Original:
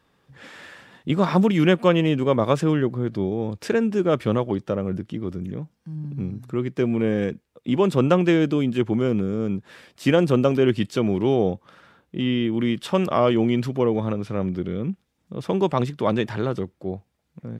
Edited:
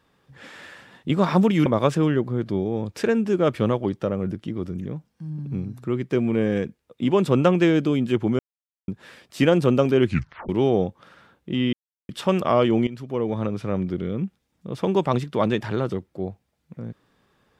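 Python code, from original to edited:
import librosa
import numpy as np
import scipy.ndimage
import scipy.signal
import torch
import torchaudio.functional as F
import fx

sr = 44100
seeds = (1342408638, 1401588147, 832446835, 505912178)

y = fx.edit(x, sr, fx.cut(start_s=1.66, length_s=0.66),
    fx.silence(start_s=9.05, length_s=0.49),
    fx.tape_stop(start_s=10.72, length_s=0.43),
    fx.silence(start_s=12.39, length_s=0.36),
    fx.fade_in_from(start_s=13.53, length_s=0.62, floor_db=-16.5), tone=tone)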